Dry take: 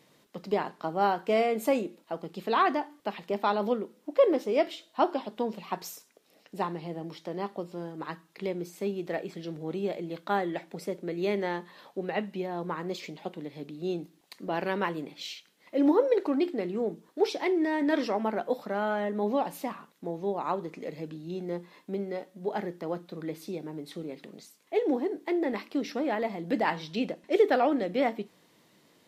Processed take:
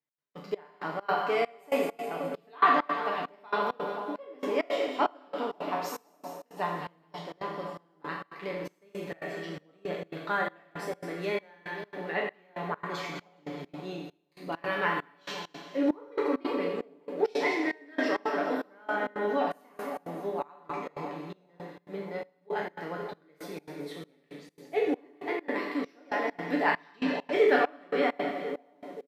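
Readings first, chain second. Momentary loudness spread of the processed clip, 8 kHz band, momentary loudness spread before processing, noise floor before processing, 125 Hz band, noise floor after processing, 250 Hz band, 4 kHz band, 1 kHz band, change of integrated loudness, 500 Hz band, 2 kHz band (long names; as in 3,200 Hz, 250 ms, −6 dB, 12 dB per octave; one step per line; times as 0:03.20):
14 LU, −3.5 dB, 14 LU, −64 dBFS, −4.5 dB, −65 dBFS, −4.0 dB, −0.5 dB, 0.0 dB, −1.5 dB, −2.5 dB, +4.5 dB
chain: peak hold with a decay on every bin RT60 0.43 s
comb filter 6.9 ms, depth 57%
on a send: echo with a time of its own for lows and highs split 870 Hz, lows 523 ms, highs 206 ms, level −8.5 dB
on the sum: downward expander −36 dBFS
parametric band 1,600 Hz +8 dB 1.5 octaves
four-comb reverb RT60 0.99 s, combs from 27 ms, DRR 2.5 dB
gate pattern "x.xxxx...x" 166 BPM −24 dB
level −7 dB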